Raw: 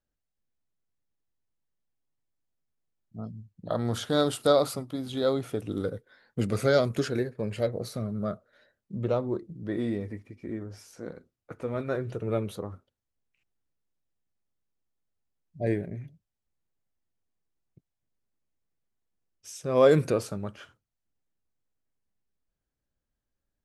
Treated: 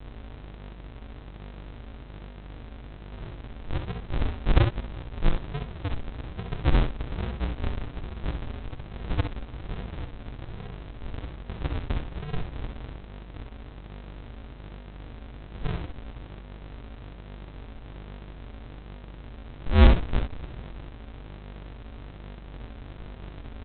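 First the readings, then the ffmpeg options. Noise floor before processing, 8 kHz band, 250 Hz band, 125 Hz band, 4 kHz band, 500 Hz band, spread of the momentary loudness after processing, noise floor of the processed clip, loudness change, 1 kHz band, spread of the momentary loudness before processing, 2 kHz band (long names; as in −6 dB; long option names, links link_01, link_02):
−85 dBFS, below −35 dB, −3.0 dB, +5.0 dB, −2.0 dB, −11.0 dB, 17 LU, −44 dBFS, −2.5 dB, −1.5 dB, 18 LU, +1.0 dB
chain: -filter_complex "[0:a]aeval=exprs='val(0)+0.5*0.0422*sgn(val(0))':channel_layout=same,asplit=3[link_01][link_02][link_03];[link_01]bandpass=frequency=530:width_type=q:width=8,volume=0dB[link_04];[link_02]bandpass=frequency=1840:width_type=q:width=8,volume=-6dB[link_05];[link_03]bandpass=frequency=2480:width_type=q:width=8,volume=-9dB[link_06];[link_04][link_05][link_06]amix=inputs=3:normalize=0,adynamicequalizer=threshold=0.00447:dfrequency=190:dqfactor=0.94:tfrequency=190:tqfactor=0.94:attack=5:release=100:ratio=0.375:range=3:mode=cutabove:tftype=bell,bandreject=frequency=120.2:width_type=h:width=4,bandreject=frequency=240.4:width_type=h:width=4,bandreject=frequency=360.6:width_type=h:width=4,bandreject=frequency=480.8:width_type=h:width=4,bandreject=frequency=601:width_type=h:width=4,bandreject=frequency=721.2:width_type=h:width=4,bandreject=frequency=841.4:width_type=h:width=4,bandreject=frequency=961.6:width_type=h:width=4,bandreject=frequency=1081.8:width_type=h:width=4,bandreject=frequency=1202:width_type=h:width=4,bandreject=frequency=1322.2:width_type=h:width=4,bandreject=frequency=1442.4:width_type=h:width=4,bandreject=frequency=1562.6:width_type=h:width=4,bandreject=frequency=1682.8:width_type=h:width=4,bandreject=frequency=1803:width_type=h:width=4,bandreject=frequency=1923.2:width_type=h:width=4,bandreject=frequency=2043.4:width_type=h:width=4,bandreject=frequency=2163.6:width_type=h:width=4,bandreject=frequency=2283.8:width_type=h:width=4,bandreject=frequency=2404:width_type=h:width=4,bandreject=frequency=2524.2:width_type=h:width=4,bandreject=frequency=2644.4:width_type=h:width=4,bandreject=frequency=2764.6:width_type=h:width=4,bandreject=frequency=2884.8:width_type=h:width=4,bandreject=frequency=3005:width_type=h:width=4,bandreject=frequency=3125.2:width_type=h:width=4,bandreject=frequency=3245.4:width_type=h:width=4,bandreject=frequency=3365.6:width_type=h:width=4,bandreject=frequency=3485.8:width_type=h:width=4,aeval=exprs='val(0)+0.00501*(sin(2*PI*50*n/s)+sin(2*PI*2*50*n/s)/2+sin(2*PI*3*50*n/s)/3+sin(2*PI*4*50*n/s)/4+sin(2*PI*5*50*n/s)/5)':channel_layout=same,aresample=8000,acrusher=samples=38:mix=1:aa=0.000001:lfo=1:lforange=22.8:lforate=1.2,aresample=44100,aecho=1:1:48|65:0.266|0.447,volume=6dB"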